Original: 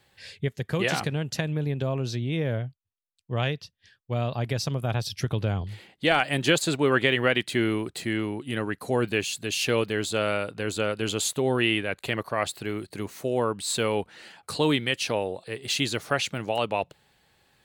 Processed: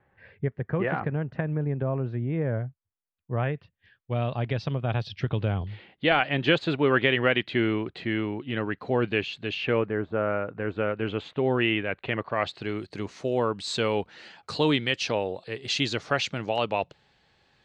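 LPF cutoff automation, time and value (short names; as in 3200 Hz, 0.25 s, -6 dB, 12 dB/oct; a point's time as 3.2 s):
LPF 24 dB/oct
3.34 s 1800 Hz
4.12 s 3500 Hz
9.5 s 3500 Hz
10.01 s 1500 Hz
11.45 s 2900 Hz
12.19 s 2900 Hz
12.73 s 6000 Hz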